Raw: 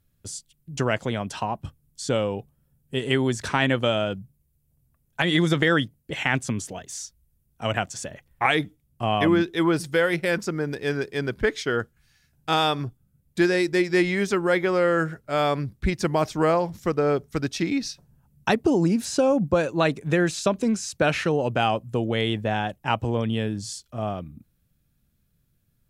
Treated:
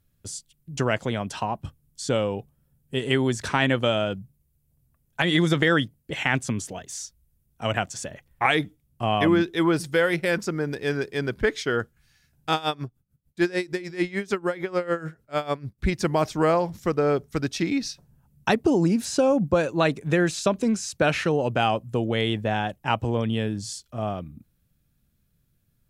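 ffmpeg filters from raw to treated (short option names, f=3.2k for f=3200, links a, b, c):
-filter_complex "[0:a]asplit=3[a][b][c];[a]afade=t=out:st=12.53:d=0.02[d];[b]aeval=exprs='val(0)*pow(10,-19*(0.5-0.5*cos(2*PI*6.7*n/s))/20)':c=same,afade=t=in:st=12.53:d=0.02,afade=t=out:st=15.78:d=0.02[e];[c]afade=t=in:st=15.78:d=0.02[f];[d][e][f]amix=inputs=3:normalize=0"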